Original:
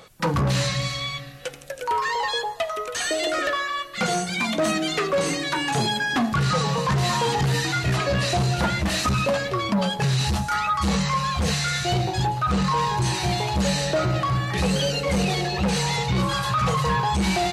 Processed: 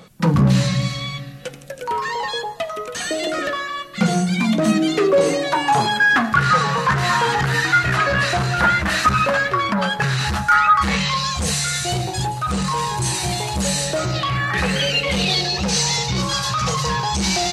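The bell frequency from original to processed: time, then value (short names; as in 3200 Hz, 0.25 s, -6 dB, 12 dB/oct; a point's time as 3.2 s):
bell +13 dB 1.1 oct
4.64 s 190 Hz
6.06 s 1500 Hz
10.8 s 1500 Hz
11.48 s 9300 Hz
13.97 s 9300 Hz
14.49 s 1400 Hz
15.61 s 5700 Hz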